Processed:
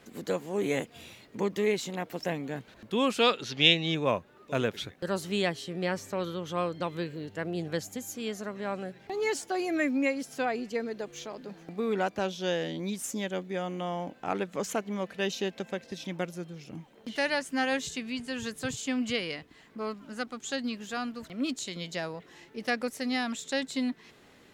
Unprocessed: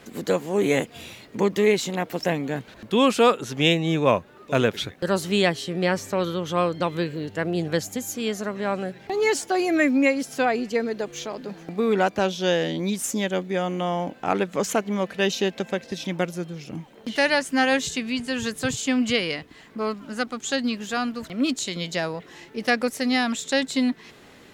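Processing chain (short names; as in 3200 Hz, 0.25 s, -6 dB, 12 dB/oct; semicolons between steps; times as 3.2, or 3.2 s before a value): 3.19–3.95 EQ curve 1100 Hz 0 dB, 4500 Hz +13 dB, 7900 Hz -5 dB; gain -8 dB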